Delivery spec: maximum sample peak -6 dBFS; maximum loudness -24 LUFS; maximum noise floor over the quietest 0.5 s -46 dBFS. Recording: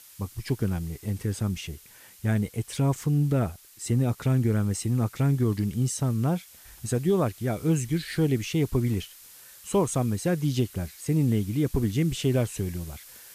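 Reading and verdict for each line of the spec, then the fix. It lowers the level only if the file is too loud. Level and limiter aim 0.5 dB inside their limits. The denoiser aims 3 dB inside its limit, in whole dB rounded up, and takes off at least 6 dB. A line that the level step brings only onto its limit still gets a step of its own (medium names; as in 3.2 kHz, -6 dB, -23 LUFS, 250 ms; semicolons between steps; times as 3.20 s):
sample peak -13.5 dBFS: pass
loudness -27.0 LUFS: pass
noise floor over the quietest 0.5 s -49 dBFS: pass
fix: none needed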